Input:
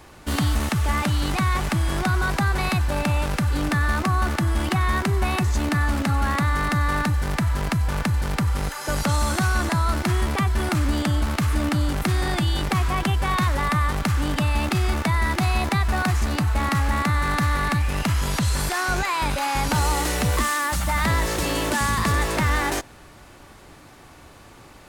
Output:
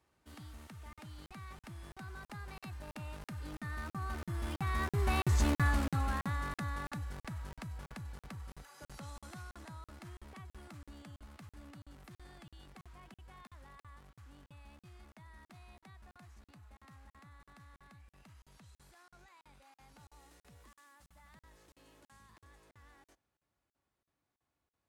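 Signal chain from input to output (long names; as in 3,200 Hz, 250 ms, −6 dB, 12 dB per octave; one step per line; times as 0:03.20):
source passing by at 0:05.43, 10 m/s, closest 3.6 metres
high-pass filter 40 Hz 24 dB per octave
regular buffer underruns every 0.33 s, samples 2,048, zero, from 0:00.93
level −6 dB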